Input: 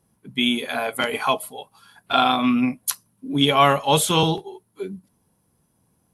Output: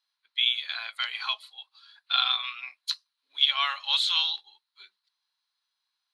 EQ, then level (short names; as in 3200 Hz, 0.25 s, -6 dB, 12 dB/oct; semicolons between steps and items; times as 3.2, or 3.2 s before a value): HPF 1200 Hz 24 dB/oct; synth low-pass 4100 Hz, resonance Q 8.3; -8.5 dB